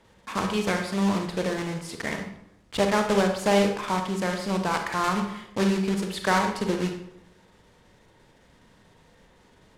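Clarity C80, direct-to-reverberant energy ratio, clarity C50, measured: 9.5 dB, 4.0 dB, 6.0 dB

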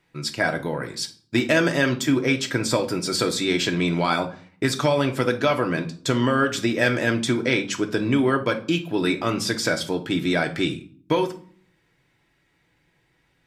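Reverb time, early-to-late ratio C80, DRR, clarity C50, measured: 0.45 s, 19.0 dB, 3.5 dB, 13.0 dB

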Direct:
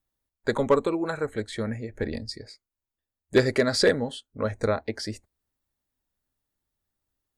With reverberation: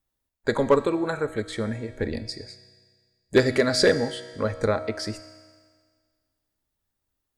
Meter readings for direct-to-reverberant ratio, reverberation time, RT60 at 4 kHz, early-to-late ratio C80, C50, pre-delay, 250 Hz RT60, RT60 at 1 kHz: 11.0 dB, 1.7 s, 1.7 s, 14.0 dB, 13.0 dB, 3 ms, 1.7 s, 1.7 s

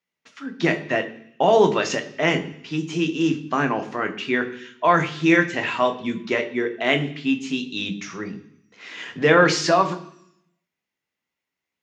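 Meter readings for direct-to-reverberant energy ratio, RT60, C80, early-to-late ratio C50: 6.0 dB, 0.70 s, 16.0 dB, 13.5 dB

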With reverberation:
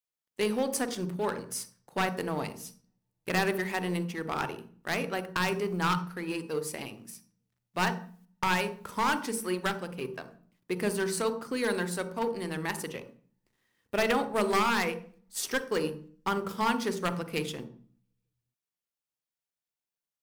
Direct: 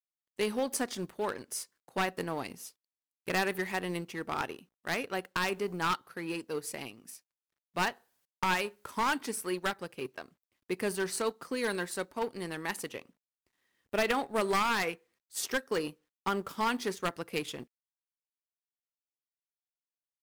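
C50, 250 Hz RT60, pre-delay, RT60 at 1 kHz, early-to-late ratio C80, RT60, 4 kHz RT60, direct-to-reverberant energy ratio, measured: 12.5 dB, 0.75 s, 38 ms, 0.40 s, 16.0 dB, 0.45 s, 0.40 s, 10.0 dB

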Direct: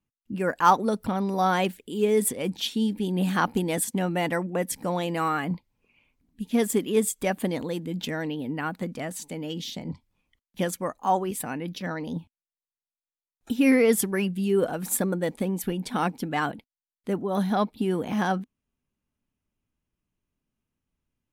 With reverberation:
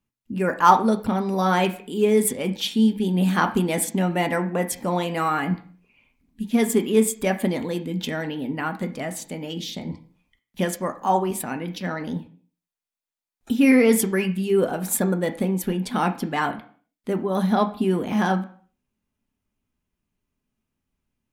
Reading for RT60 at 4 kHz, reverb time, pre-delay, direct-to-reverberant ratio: 0.40 s, 0.50 s, 3 ms, 5.5 dB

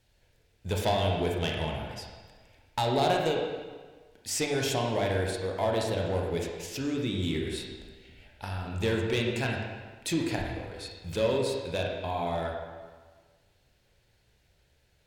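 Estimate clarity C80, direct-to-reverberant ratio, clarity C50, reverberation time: 3.0 dB, −1.0 dB, 1.5 dB, 1.5 s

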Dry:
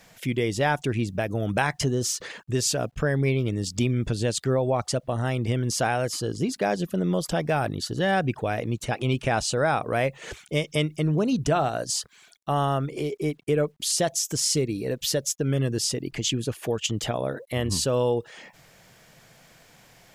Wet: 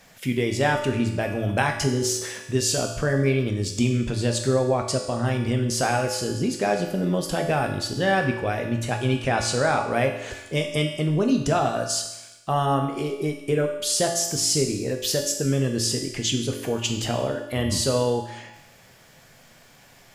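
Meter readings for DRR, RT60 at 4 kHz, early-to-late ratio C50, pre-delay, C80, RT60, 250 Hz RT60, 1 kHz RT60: 2.0 dB, 1.0 s, 6.0 dB, 4 ms, 8.5 dB, 1.0 s, 1.0 s, 1.0 s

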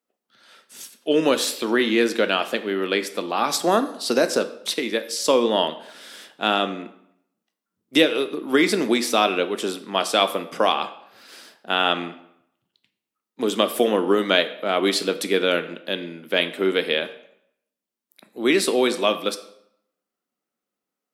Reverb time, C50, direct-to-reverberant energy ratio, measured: 0.75 s, 13.5 dB, 10.0 dB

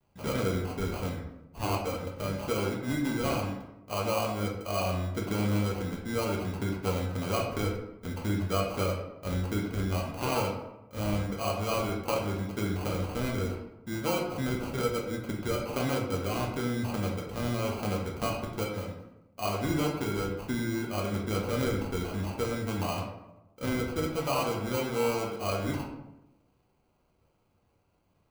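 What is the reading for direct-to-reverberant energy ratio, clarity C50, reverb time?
−2.0 dB, 4.5 dB, 0.95 s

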